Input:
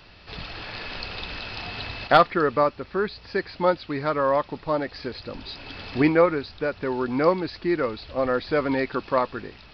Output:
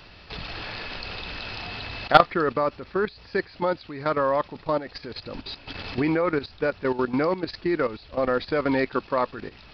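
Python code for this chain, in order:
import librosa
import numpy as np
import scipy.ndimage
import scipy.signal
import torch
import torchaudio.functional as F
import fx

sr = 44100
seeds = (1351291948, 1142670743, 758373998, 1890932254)

y = fx.level_steps(x, sr, step_db=13)
y = F.gain(torch.from_numpy(y), 4.0).numpy()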